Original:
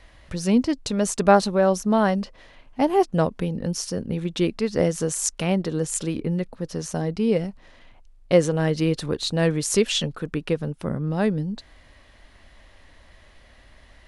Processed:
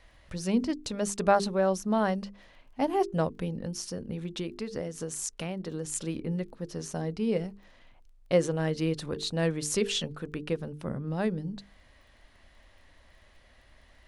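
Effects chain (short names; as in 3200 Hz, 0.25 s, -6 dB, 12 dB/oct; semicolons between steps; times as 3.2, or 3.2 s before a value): notches 50/100/150/200/250/300/350/400/450 Hz; 3.58–5.85 compressor 10:1, threshold -24 dBFS, peak gain reduction 9 dB; crackle 14/s -49 dBFS; gain -6.5 dB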